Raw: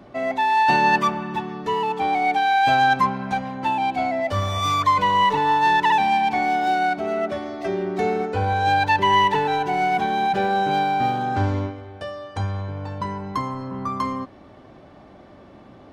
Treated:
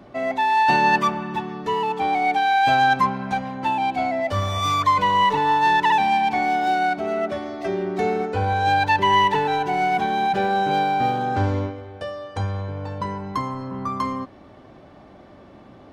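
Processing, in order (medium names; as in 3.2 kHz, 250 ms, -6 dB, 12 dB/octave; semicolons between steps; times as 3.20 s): 10.70–13.16 s: peaking EQ 500 Hz +7 dB 0.23 oct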